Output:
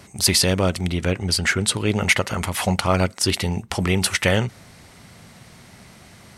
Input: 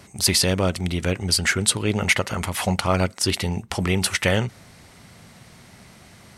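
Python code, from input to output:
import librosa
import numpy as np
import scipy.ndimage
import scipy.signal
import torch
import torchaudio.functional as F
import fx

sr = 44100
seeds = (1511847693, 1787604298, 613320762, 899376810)

y = fx.high_shelf(x, sr, hz=5300.0, db=-5.5, at=(0.88, 1.74))
y = y * 10.0 ** (1.5 / 20.0)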